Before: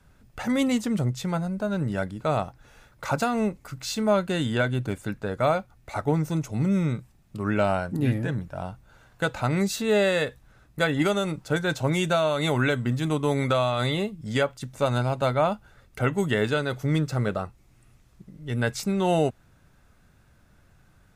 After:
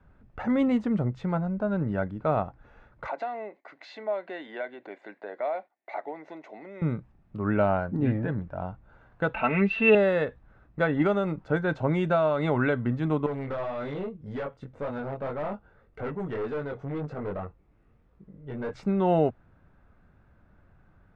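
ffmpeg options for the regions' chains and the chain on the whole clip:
-filter_complex "[0:a]asettb=1/sr,asplit=3[s0][s1][s2];[s0]atrim=end=3.074[s3];[s1]atrim=start=3.07:end=6.82,asetpts=PTS-STARTPTS,afade=t=in:d=0.004:c=qsin,afade=t=out:st=3.746:d=0.004:c=qsin,agate=range=0.2:threshold=0.00251:ratio=16:release=100:detection=peak,acompressor=threshold=0.0316:ratio=2.5:attack=3.2:release=140:knee=1:detection=peak,highpass=f=360:w=0.5412,highpass=f=360:w=1.3066,equalizer=f=470:t=q:w=4:g=-5,equalizer=f=680:t=q:w=4:g=6,equalizer=f=1300:t=q:w=4:g=-9,equalizer=f=2000:t=q:w=4:g=10,equalizer=f=4000:t=q:w=4:g=5,equalizer=f=5600:t=q:w=4:g=-3,lowpass=f=6600:w=0.5412,lowpass=f=6600:w=1.3066[s4];[s2]atrim=start=6.816[s5];[s3][s4]acrossfade=d=0.004:c1=hsin:c2=qsin[s6];[s6][s5]acrossfade=d=0.004:c1=qsin:c2=hsin,asettb=1/sr,asplit=3[s7][s8][s9];[s7]atrim=end=9.344[s10];[s8]atrim=start=9.34:end=9.95,asetpts=PTS-STARTPTS,afade=t=in:d=0.004:c=qsin,afade=t=out:st=0.606:d=0.004:c=qsin,lowpass=f=2700:t=q:w=13,equalizer=f=94:w=1.3:g=-12,aecho=1:1:4.5:0.68,atrim=end_sample=26901[s11];[s9]atrim=start=9.946[s12];[s10][s11]acrossfade=d=0.004:c1=hsin:c2=qsin[s13];[s13][s12]acrossfade=d=0.004:c1=qsin:c2=hsin,asettb=1/sr,asplit=3[s14][s15][s16];[s14]atrim=end=13.264[s17];[s15]atrim=start=13.26:end=18.73,asetpts=PTS-STARTPTS,afade=t=in:d=0.004:c=qsin,afade=t=out:st=5.466:d=0.004:c=qsin,equalizer=f=470:t=o:w=0.35:g=7.5,flanger=delay=20:depth=2.2:speed=1.8,aeval=exprs='(tanh(25.1*val(0)+0.2)-tanh(0.2))/25.1':c=same[s18];[s16]atrim=start=18.726[s19];[s17][s18]acrossfade=d=0.004:c1=hsin:c2=qsin[s20];[s20][s19]acrossfade=d=0.004:c1=qsin:c2=hsin,lowpass=1600,equalizer=f=130:t=o:w=0.26:g=-5"

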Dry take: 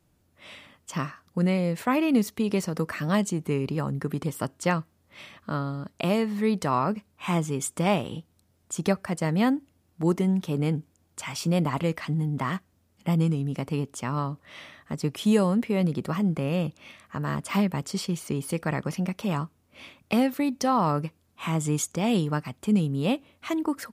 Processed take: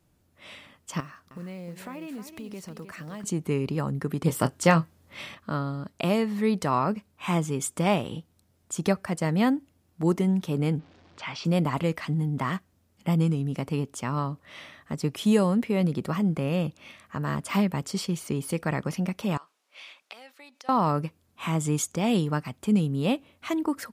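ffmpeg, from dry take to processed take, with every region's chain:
-filter_complex "[0:a]asettb=1/sr,asplit=3[s0][s1][s2];[s0]atrim=end=1.004[s3];[s1]atrim=start=1:end=3.24,asetpts=PTS-STARTPTS,afade=t=in:d=0.004:c=qsin,afade=t=out:st=2.236:d=0.004:c=qsin,acompressor=threshold=0.00891:ratio=3:attack=3.2:release=140:knee=1:detection=peak,acrusher=bits=7:mode=log:mix=0:aa=0.000001,aecho=1:1:310:0.335,atrim=end_sample=98784[s4];[s2]atrim=start=3.236[s5];[s3][s4]acrossfade=d=0.004:c1=hsin:c2=qsin[s6];[s6][s5]acrossfade=d=0.004:c1=qsin:c2=hsin,asettb=1/sr,asplit=3[s7][s8][s9];[s7]atrim=end=4.244[s10];[s8]atrim=start=4.24:end=5.35,asetpts=PTS-STARTPTS,afade=t=in:d=0.004:c=qsin,afade=t=out:st=1.106:d=0.004:c=qsin,acontrast=31,asplit=2[s11][s12];[s12]adelay=24,volume=0.282[s13];[s11][s13]amix=inputs=2:normalize=0,atrim=end_sample=48951[s14];[s9]atrim=start=5.346[s15];[s10][s14]acrossfade=d=0.004:c1=hsin:c2=qsin[s16];[s16][s15]acrossfade=d=0.004:c1=qsin:c2=hsin,asettb=1/sr,asplit=3[s17][s18][s19];[s17]atrim=end=10.794[s20];[s18]atrim=start=10.79:end=11.45,asetpts=PTS-STARTPTS,afade=t=in:d=0.004:c=qsin,afade=t=out:st=0.656:d=0.004:c=qsin,aeval=exprs='val(0)+0.5*0.00447*sgn(val(0))':c=same,lowpass=f=4500:w=0.5412,lowpass=f=4500:w=1.3066,lowshelf=f=130:g=-10[s21];[s19]atrim=start=11.446[s22];[s20][s21]acrossfade=d=0.004:c1=hsin:c2=qsin[s23];[s23][s22]acrossfade=d=0.004:c1=qsin:c2=hsin,asettb=1/sr,asplit=3[s24][s25][s26];[s24]atrim=end=19.374[s27];[s25]atrim=start=19.37:end=20.69,asetpts=PTS-STARTPTS,afade=t=in:d=0.004:c=qsin,afade=t=out:st=1.316:d=0.004:c=qsin,aemphasis=mode=production:type=riaa,acompressor=threshold=0.0112:ratio=10:attack=3.2:release=140:knee=1:detection=peak,highpass=550,lowpass=4400[s28];[s26]atrim=start=20.686[s29];[s27][s28]acrossfade=d=0.004:c1=hsin:c2=qsin[s30];[s30][s29]acrossfade=d=0.004:c1=qsin:c2=hsin"

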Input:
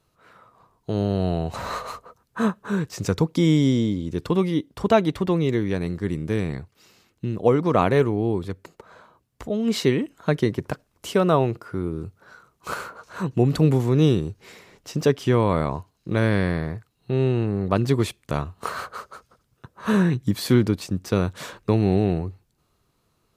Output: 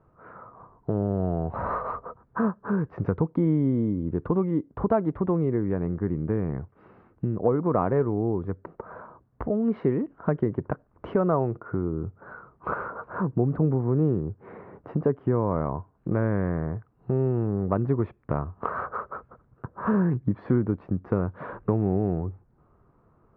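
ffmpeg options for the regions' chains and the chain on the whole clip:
-filter_complex "[0:a]asettb=1/sr,asplit=3[s0][s1][s2];[s0]atrim=end=13.054[s3];[s1]atrim=start=13.05:end=15.56,asetpts=PTS-STARTPTS,afade=t=in:d=0.004:c=qsin,afade=t=out:st=2.506:d=0.004:c=qsin,highpass=58,highshelf=f=2800:g=-9.5[s4];[s2]atrim=start=15.556[s5];[s3][s4]acrossfade=d=0.004:c1=hsin:c2=qsin[s6];[s6][s5]acrossfade=d=0.004:c1=qsin:c2=hsin,lowpass=f=1400:w=0.5412,lowpass=f=1400:w=1.3066,acompressor=threshold=0.0126:ratio=2,volume=2.51"

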